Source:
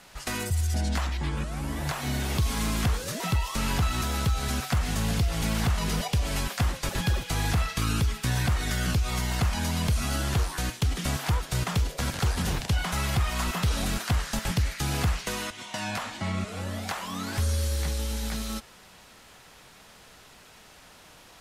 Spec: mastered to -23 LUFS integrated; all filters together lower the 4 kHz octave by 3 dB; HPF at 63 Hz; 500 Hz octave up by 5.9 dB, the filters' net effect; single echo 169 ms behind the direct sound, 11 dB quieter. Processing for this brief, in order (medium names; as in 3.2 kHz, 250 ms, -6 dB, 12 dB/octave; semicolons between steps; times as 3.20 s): high-pass 63 Hz; peaking EQ 500 Hz +7.5 dB; peaking EQ 4 kHz -4 dB; delay 169 ms -11 dB; trim +5.5 dB